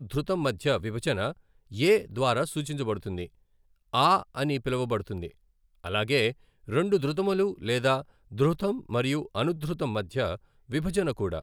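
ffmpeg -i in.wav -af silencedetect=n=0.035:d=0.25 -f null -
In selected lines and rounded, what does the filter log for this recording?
silence_start: 1.30
silence_end: 1.76 | silence_duration: 0.45
silence_start: 3.24
silence_end: 3.94 | silence_duration: 0.70
silence_start: 5.26
silence_end: 5.85 | silence_duration: 0.59
silence_start: 6.31
silence_end: 6.70 | silence_duration: 0.39
silence_start: 8.00
silence_end: 8.39 | silence_duration: 0.39
silence_start: 10.34
silence_end: 10.72 | silence_duration: 0.38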